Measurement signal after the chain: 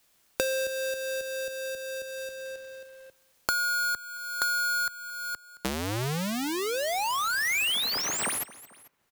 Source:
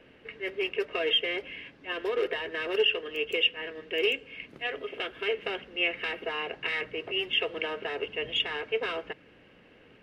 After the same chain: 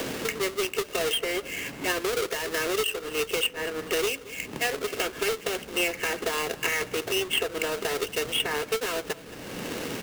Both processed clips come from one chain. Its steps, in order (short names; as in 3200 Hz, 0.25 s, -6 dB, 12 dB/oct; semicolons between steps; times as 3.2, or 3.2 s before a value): half-waves squared off; feedback echo 0.221 s, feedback 23%, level -24 dB; three-band squash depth 100%; gain -1.5 dB